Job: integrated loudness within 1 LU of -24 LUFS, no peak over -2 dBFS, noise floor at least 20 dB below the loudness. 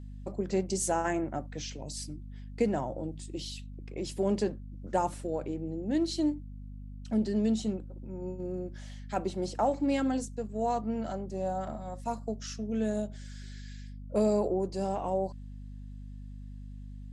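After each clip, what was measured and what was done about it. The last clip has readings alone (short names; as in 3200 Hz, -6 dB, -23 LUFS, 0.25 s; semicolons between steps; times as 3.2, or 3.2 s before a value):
hum 50 Hz; harmonics up to 250 Hz; hum level -41 dBFS; loudness -32.5 LUFS; peak -14.5 dBFS; loudness target -24.0 LUFS
-> de-hum 50 Hz, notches 5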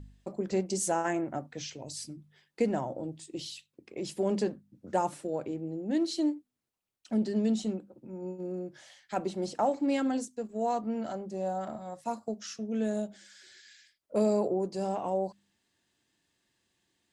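hum none; loudness -33.0 LUFS; peak -15.5 dBFS; loudness target -24.0 LUFS
-> gain +9 dB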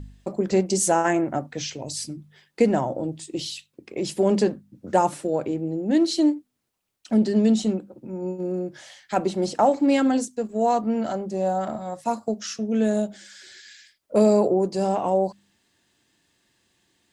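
loudness -24.0 LUFS; peak -6.5 dBFS; noise floor -73 dBFS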